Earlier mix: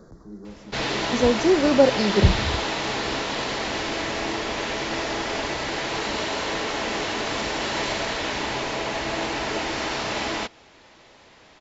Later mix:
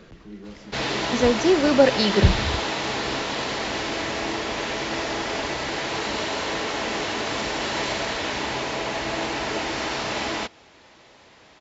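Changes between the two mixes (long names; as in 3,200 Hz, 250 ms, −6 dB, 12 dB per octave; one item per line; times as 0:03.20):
speech: remove Butterworth band-reject 2,700 Hz, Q 0.65
background: add high-pass filter 40 Hz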